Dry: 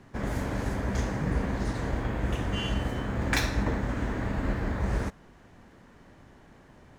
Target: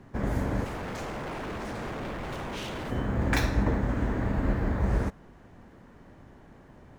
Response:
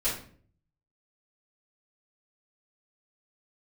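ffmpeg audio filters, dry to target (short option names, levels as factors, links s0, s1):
-filter_complex "[0:a]lowpass=f=1200:p=1,aemphasis=mode=production:type=50fm,asettb=1/sr,asplit=3[s0][s1][s2];[s0]atrim=end=0.644[s3];[s1]atrim=start=0.64:end=2.91,asetpts=PTS-STARTPTS,afade=t=in:d=0.004:c=qsin,afade=t=out:st=2.266:d=0.004:c=qsin,aeval=exprs='0.0211*(abs(mod(val(0)/0.0211+3,4)-2)-1)':c=same[s4];[s2]atrim=start=2.906[s5];[s3][s4]acrossfade=d=0.004:c1=hsin:c2=qsin[s6];[s6][s5]acrossfade=d=0.004:c1=qsin:c2=hsin,volume=1.41"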